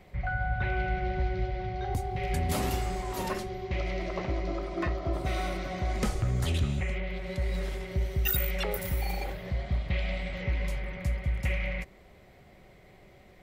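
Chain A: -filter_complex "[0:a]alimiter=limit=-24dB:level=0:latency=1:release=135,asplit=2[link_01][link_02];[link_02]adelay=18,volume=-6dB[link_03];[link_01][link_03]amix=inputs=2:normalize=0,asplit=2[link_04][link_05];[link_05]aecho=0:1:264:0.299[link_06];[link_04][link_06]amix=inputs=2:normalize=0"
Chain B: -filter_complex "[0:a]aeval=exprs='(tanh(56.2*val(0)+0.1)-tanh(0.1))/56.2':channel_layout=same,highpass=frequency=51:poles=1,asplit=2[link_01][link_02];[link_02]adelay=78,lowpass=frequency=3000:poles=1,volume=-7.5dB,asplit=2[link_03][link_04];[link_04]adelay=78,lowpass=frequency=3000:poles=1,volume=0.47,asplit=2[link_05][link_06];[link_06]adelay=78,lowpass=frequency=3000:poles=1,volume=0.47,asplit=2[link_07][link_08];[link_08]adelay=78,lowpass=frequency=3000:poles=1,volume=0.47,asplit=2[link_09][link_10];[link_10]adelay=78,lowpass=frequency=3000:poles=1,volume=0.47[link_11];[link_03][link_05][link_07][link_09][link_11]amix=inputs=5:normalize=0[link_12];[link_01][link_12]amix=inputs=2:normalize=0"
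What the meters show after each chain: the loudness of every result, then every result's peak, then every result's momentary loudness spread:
−32.5, −39.0 LKFS; −19.5, −28.0 dBFS; 3, 5 LU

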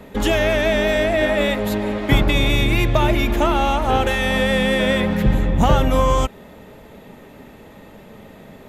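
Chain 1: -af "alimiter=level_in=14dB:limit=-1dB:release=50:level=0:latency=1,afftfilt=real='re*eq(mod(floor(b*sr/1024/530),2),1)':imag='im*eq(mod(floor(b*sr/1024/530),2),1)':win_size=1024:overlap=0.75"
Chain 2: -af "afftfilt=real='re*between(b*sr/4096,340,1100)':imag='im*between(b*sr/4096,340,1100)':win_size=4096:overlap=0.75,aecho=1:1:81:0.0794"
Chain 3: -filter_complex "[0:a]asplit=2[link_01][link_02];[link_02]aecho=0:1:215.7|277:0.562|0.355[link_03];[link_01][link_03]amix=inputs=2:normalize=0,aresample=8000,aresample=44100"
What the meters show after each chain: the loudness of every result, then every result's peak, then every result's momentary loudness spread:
−14.5, −22.5, −17.0 LKFS; −2.0, −8.0, −3.0 dBFS; 11, 7, 4 LU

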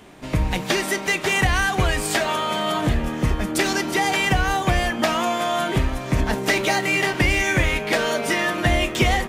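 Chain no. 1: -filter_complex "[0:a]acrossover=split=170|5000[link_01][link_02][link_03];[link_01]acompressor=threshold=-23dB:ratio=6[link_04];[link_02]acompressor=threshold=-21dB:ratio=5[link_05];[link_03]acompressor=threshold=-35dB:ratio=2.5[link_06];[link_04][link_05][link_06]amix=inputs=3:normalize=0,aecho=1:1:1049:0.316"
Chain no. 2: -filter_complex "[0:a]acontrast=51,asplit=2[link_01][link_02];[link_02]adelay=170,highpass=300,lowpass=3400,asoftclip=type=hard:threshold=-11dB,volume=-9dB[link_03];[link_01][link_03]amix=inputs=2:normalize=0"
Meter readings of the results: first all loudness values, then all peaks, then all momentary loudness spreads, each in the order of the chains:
−23.5, −15.5 LKFS; −8.5, −2.5 dBFS; 3, 4 LU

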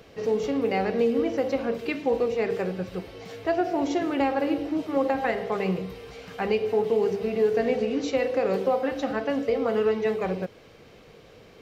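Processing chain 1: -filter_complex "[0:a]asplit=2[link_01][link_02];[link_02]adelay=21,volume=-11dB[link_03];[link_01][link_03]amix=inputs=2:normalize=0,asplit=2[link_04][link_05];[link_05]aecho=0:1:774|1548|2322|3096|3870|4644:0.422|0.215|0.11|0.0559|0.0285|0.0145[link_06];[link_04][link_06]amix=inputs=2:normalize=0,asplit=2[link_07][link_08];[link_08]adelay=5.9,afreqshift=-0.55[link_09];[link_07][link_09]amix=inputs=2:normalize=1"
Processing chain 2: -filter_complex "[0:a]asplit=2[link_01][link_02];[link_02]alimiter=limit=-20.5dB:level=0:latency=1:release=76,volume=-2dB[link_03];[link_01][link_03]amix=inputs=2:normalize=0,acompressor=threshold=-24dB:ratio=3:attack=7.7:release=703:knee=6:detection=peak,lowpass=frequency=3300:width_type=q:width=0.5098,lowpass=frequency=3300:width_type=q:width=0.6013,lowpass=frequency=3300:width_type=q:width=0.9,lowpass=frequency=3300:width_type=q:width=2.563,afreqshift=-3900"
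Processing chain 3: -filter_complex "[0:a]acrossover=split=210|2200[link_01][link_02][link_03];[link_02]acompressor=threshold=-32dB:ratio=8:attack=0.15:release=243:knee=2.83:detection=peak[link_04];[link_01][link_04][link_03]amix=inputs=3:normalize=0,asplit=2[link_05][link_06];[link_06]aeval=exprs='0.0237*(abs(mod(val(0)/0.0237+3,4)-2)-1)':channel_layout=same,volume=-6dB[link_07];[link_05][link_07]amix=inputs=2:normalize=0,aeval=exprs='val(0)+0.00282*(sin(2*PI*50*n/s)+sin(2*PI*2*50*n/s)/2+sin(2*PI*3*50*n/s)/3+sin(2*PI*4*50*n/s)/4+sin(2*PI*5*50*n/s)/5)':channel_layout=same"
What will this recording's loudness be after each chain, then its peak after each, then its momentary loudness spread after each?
−28.0, −25.0, −32.5 LKFS; −13.0, −15.0, −19.0 dBFS; 10, 9, 6 LU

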